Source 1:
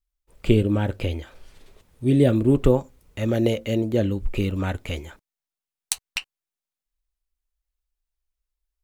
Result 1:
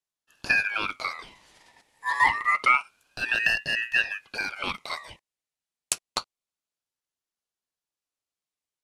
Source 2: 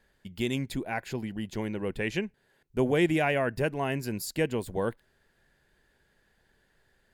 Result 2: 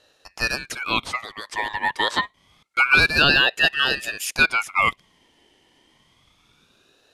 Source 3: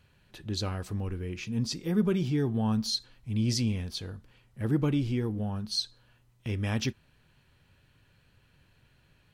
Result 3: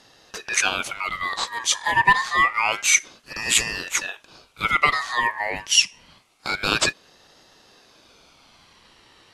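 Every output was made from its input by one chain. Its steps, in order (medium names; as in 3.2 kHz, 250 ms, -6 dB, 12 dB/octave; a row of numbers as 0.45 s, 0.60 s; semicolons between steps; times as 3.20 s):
dynamic bell 3.4 kHz, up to -3 dB, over -52 dBFS; elliptic band-pass 410–9500 Hz, stop band 40 dB; in parallel at -6 dB: overload inside the chain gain 18 dB; on the sum: ring modulator with a swept carrier 1.8 kHz, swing 25%, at 0.27 Hz; peak normalisation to -2 dBFS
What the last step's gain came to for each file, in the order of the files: +1.0 dB, +10.5 dB, +15.5 dB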